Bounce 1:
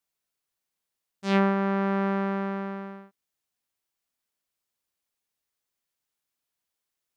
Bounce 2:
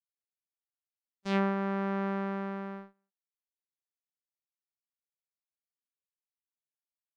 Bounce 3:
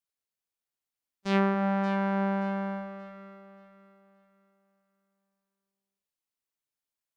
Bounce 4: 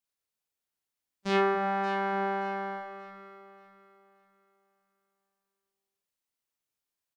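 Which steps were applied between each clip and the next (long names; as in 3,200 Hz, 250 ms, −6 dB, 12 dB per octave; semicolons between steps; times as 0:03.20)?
noise gate −35 dBFS, range −29 dB; level −6 dB
delay that swaps between a low-pass and a high-pass 289 ms, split 960 Hz, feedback 56%, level −5.5 dB; level +3.5 dB
double-tracking delay 33 ms −2.5 dB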